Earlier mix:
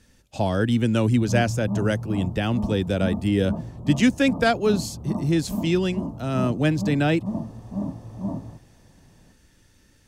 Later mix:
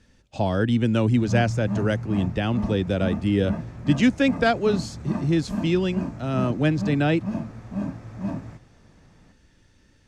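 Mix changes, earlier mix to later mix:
background: remove steep low-pass 1.1 kHz 48 dB/octave; master: add distance through air 74 m

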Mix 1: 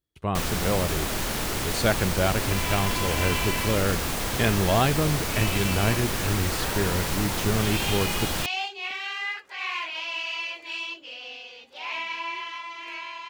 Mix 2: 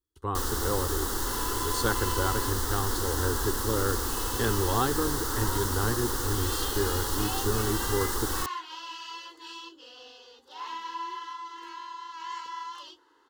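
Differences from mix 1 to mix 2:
second sound: entry -1.25 s; master: add static phaser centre 640 Hz, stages 6

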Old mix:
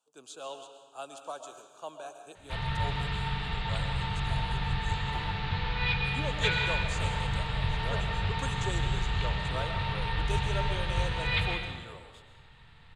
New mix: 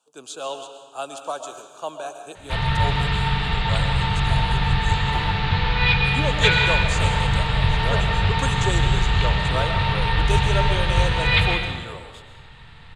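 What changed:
speech +10.5 dB; background +10.5 dB

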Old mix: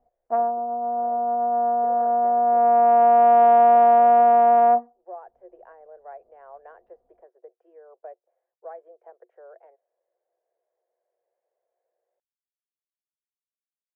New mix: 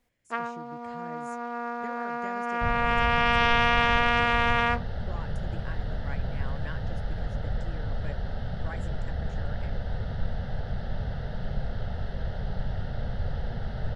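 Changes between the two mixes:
speech: remove rippled Chebyshev high-pass 350 Hz, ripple 6 dB; second sound: unmuted; master: remove resonant low-pass 700 Hz, resonance Q 7.7

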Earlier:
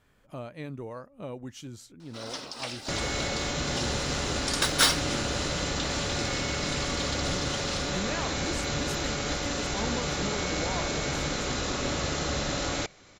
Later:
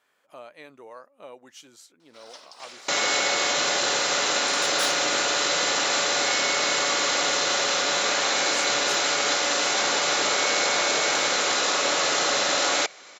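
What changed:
first sound -8.0 dB; second sound +10.0 dB; master: add high-pass 570 Hz 12 dB/octave

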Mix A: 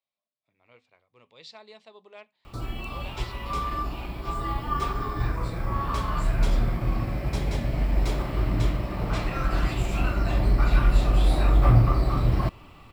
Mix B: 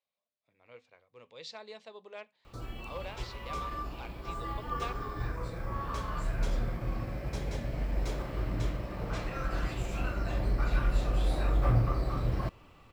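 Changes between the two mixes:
background -8.5 dB; master: add graphic EQ with 31 bands 500 Hz +7 dB, 1.6 kHz +4 dB, 6.3 kHz +5 dB

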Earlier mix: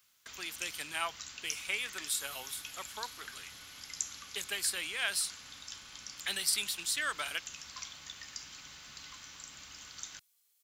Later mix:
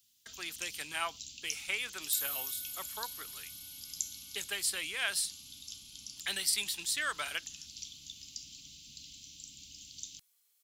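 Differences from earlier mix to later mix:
first sound: add inverse Chebyshev band-stop 500–1800 Hz, stop band 40 dB; second sound: remove distance through air 63 m

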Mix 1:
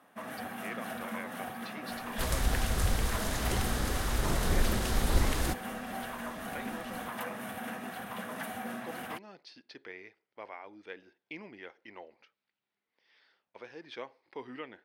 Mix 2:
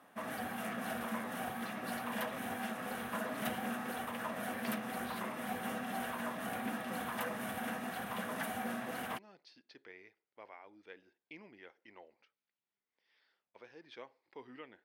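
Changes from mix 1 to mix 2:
speech -8.0 dB; second sound: muted

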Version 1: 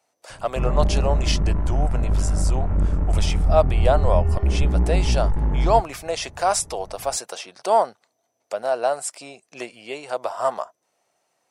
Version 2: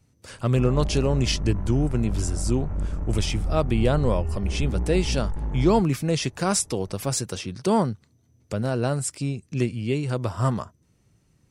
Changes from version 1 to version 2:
speech: remove resonant high-pass 690 Hz, resonance Q 3.6; background -7.5 dB

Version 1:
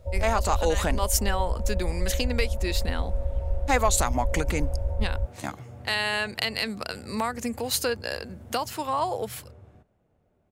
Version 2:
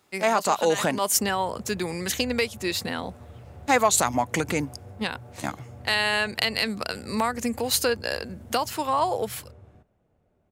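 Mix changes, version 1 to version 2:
speech +3.0 dB; first sound: muted

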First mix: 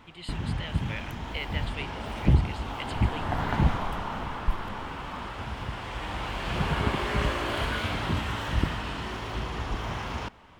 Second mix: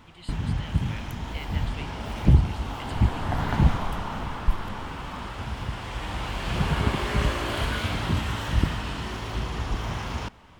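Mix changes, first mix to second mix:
speech -6.5 dB; master: add tone controls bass +4 dB, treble +5 dB

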